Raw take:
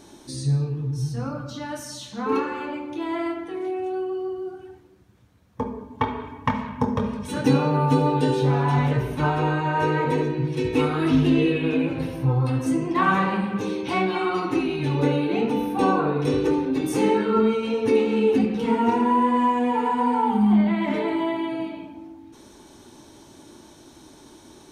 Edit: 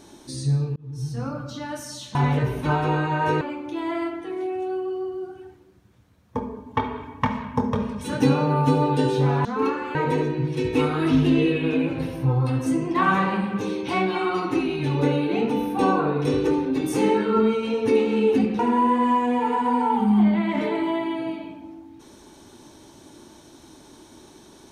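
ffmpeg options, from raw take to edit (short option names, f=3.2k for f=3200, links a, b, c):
-filter_complex "[0:a]asplit=7[a][b][c][d][e][f][g];[a]atrim=end=0.76,asetpts=PTS-STARTPTS,afade=t=out:st=0.756:d=0.004:c=hsin[h];[b]atrim=start=0.76:end=2.152,asetpts=PTS-STARTPTS,afade=t=in:d=0.55:c=qsin[i];[c]atrim=start=8.688:end=9.952[j];[d]atrim=start=2.648:end=8.692[k];[e]atrim=start=2.148:end=2.652[l];[f]atrim=start=9.948:end=18.592[m];[g]atrim=start=18.918[n];[h][i]concat=n=2:v=0:a=1[o];[o][j]acrossfade=d=0.004:c1=hsin:c2=hsin[p];[p][k]acrossfade=d=0.004:c1=hsin:c2=hsin[q];[q][l]acrossfade=d=0.004:c1=hsin:c2=hsin[r];[r][m]acrossfade=d=0.004:c1=hsin:c2=hsin[s];[s][n]acrossfade=d=0.004:c1=hsin:c2=hsin"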